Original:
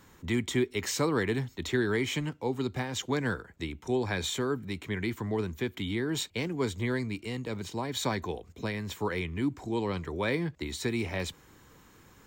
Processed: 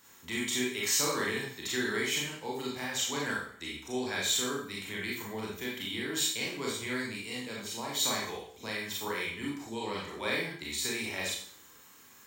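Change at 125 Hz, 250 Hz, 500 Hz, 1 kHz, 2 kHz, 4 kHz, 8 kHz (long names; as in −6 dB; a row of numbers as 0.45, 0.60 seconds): −12.0, −6.0, −5.0, −1.5, +1.5, +4.5, +7.5 decibels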